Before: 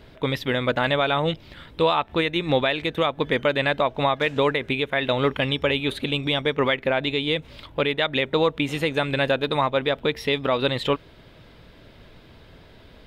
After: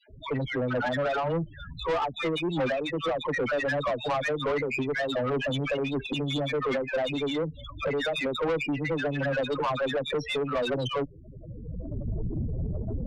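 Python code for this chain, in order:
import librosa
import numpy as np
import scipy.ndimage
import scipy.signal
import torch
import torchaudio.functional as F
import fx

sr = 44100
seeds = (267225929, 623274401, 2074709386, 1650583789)

y = fx.recorder_agc(x, sr, target_db=-17.0, rise_db_per_s=21.0, max_gain_db=30)
y = fx.dispersion(y, sr, late='lows', ms=98.0, hz=910.0)
y = fx.spec_topn(y, sr, count=8)
y = fx.tube_stage(y, sr, drive_db=25.0, bias=0.2)
y = y * 10.0 ** (1.5 / 20.0)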